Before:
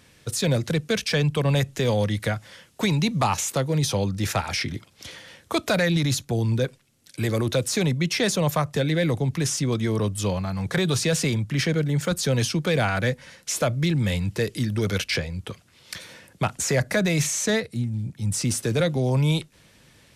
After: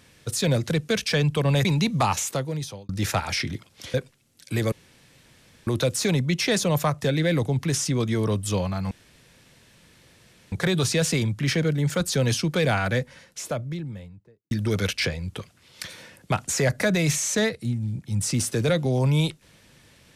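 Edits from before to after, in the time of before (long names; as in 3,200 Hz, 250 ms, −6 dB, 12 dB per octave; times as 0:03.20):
0:01.65–0:02.86: remove
0:03.38–0:04.10: fade out
0:05.15–0:06.61: remove
0:07.39: splice in room tone 0.95 s
0:10.63: splice in room tone 1.61 s
0:12.81–0:14.62: fade out and dull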